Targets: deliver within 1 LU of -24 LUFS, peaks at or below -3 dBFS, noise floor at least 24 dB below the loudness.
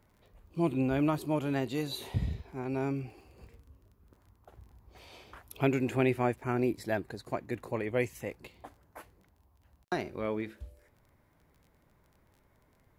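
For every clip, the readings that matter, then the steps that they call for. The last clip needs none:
tick rate 21 per s; loudness -33.0 LUFS; peak level -14.5 dBFS; loudness target -24.0 LUFS
-> de-click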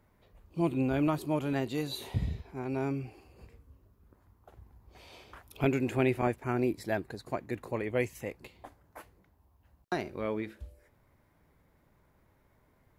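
tick rate 0.15 per s; loudness -33.0 LUFS; peak level -14.5 dBFS; loudness target -24.0 LUFS
-> trim +9 dB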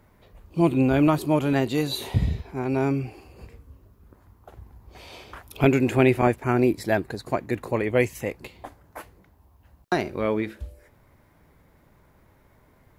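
loudness -24.0 LUFS; peak level -5.5 dBFS; noise floor -59 dBFS

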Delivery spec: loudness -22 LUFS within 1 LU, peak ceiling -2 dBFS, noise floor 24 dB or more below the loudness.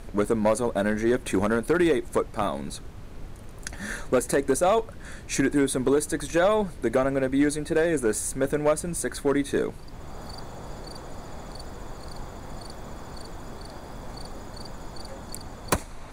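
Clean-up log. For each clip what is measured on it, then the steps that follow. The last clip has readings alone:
clipped samples 0.4%; clipping level -14.5 dBFS; noise floor -42 dBFS; noise floor target -49 dBFS; loudness -25.0 LUFS; peak level -14.5 dBFS; loudness target -22.0 LUFS
-> clip repair -14.5 dBFS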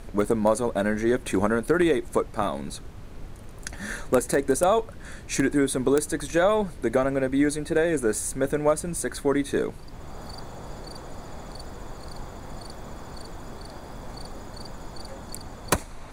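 clipped samples 0.0%; noise floor -42 dBFS; noise floor target -49 dBFS
-> noise print and reduce 7 dB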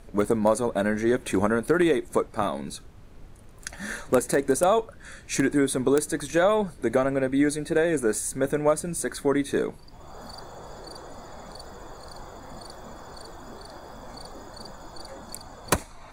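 noise floor -47 dBFS; noise floor target -49 dBFS
-> noise print and reduce 6 dB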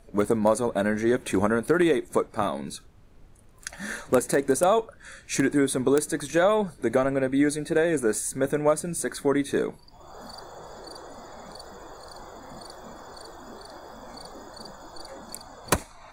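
noise floor -51 dBFS; loudness -25.0 LUFS; peak level -5.5 dBFS; loudness target -22.0 LUFS
-> trim +3 dB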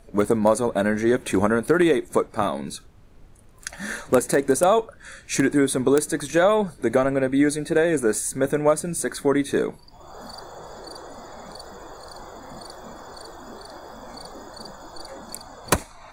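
loudness -22.0 LUFS; peak level -2.5 dBFS; noise floor -48 dBFS

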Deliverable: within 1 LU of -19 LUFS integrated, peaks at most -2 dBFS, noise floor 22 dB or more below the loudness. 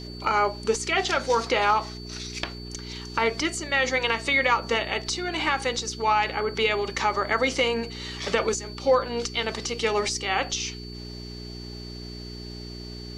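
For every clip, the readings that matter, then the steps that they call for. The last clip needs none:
hum 60 Hz; highest harmonic 420 Hz; hum level -36 dBFS; steady tone 4.5 kHz; tone level -42 dBFS; loudness -25.0 LUFS; peak level -9.0 dBFS; loudness target -19.0 LUFS
-> de-hum 60 Hz, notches 7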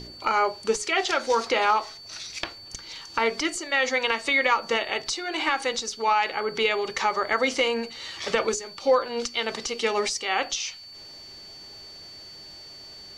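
hum not found; steady tone 4.5 kHz; tone level -42 dBFS
-> band-stop 4.5 kHz, Q 30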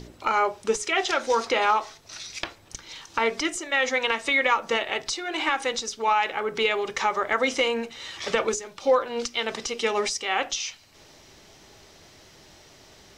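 steady tone not found; loudness -25.0 LUFS; peak level -9.0 dBFS; loudness target -19.0 LUFS
-> trim +6 dB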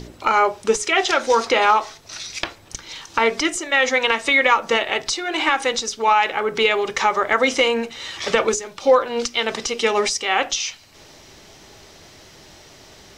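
loudness -19.0 LUFS; peak level -3.0 dBFS; noise floor -47 dBFS

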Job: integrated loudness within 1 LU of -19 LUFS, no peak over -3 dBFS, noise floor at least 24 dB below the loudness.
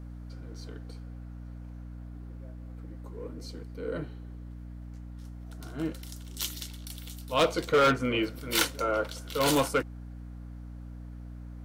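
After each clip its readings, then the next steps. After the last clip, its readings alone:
clipped samples 0.5%; clipping level -18.5 dBFS; hum 60 Hz; highest harmonic 300 Hz; hum level -40 dBFS; loudness -29.5 LUFS; peak level -18.5 dBFS; loudness target -19.0 LUFS
-> clip repair -18.5 dBFS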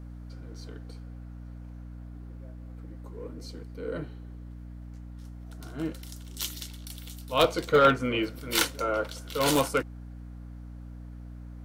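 clipped samples 0.0%; hum 60 Hz; highest harmonic 300 Hz; hum level -40 dBFS
-> hum notches 60/120/180/240/300 Hz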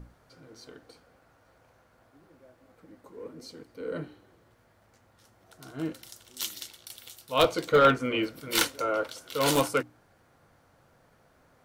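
hum not found; loudness -27.5 LUFS; peak level -9.0 dBFS; loudness target -19.0 LUFS
-> trim +8.5 dB; peak limiter -3 dBFS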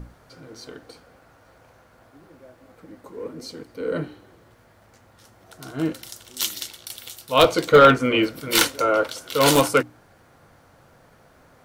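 loudness -19.5 LUFS; peak level -3.0 dBFS; noise floor -55 dBFS

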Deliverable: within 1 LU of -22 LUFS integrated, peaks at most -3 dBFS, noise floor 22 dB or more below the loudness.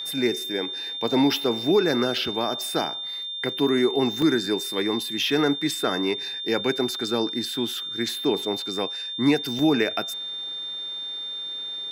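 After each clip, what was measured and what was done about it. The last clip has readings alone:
dropouts 3; longest dropout 2.2 ms; steady tone 3.6 kHz; tone level -30 dBFS; loudness -24.5 LUFS; peak level -8.0 dBFS; loudness target -22.0 LUFS
-> interpolate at 2.18/4.22/9.59 s, 2.2 ms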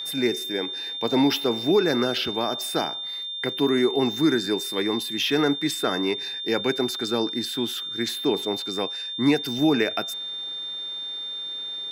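dropouts 0; steady tone 3.6 kHz; tone level -30 dBFS
-> band-stop 3.6 kHz, Q 30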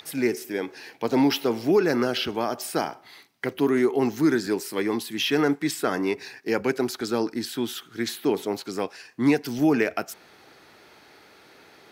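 steady tone not found; loudness -25.5 LUFS; peak level -9.0 dBFS; loudness target -22.0 LUFS
-> trim +3.5 dB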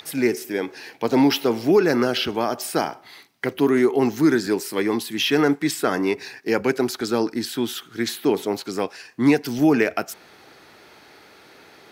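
loudness -22.0 LUFS; peak level -5.5 dBFS; noise floor -50 dBFS

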